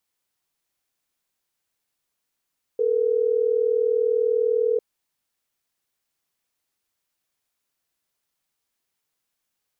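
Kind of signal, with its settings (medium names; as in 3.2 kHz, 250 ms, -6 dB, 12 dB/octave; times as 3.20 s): call progress tone ringback tone, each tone -21 dBFS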